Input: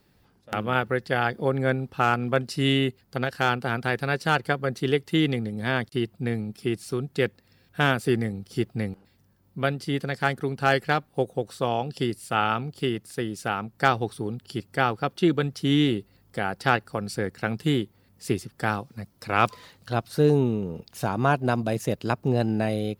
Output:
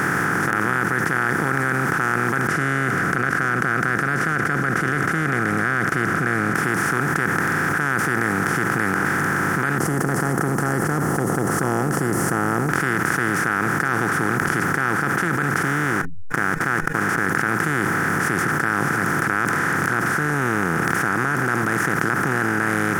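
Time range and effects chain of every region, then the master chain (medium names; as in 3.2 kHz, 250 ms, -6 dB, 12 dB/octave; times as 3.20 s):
2.47–6.55 s: Butterworth band-stop 890 Hz, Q 2.3 + tape spacing loss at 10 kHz 25 dB + comb 1.4 ms, depth 38%
9.78–12.69 s: elliptic band-stop 630–8100 Hz, stop band 50 dB + treble shelf 9.5 kHz -8 dB + tape noise reduction on one side only encoder only
15.63–17.26 s: send-on-delta sampling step -37 dBFS + low-pass 3.4 kHz 6 dB/octave + expander -35 dBFS
whole clip: spectral levelling over time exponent 0.2; FFT filter 110 Hz 0 dB, 160 Hz +4 dB, 620 Hz -8 dB, 1.8 kHz +12 dB, 2.7 kHz -7 dB, 4 kHz -10 dB, 5.8 kHz +5 dB, 12 kHz +7 dB; level flattener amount 100%; trim -13 dB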